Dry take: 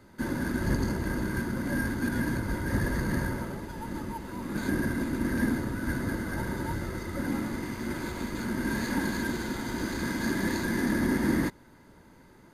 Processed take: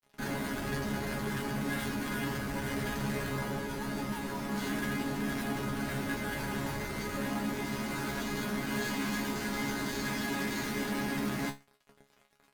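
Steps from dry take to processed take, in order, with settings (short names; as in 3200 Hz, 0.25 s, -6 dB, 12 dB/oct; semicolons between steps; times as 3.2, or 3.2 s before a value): fuzz box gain 41 dB, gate -48 dBFS; resonator bank C#3 fifth, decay 0.22 s; gain -7 dB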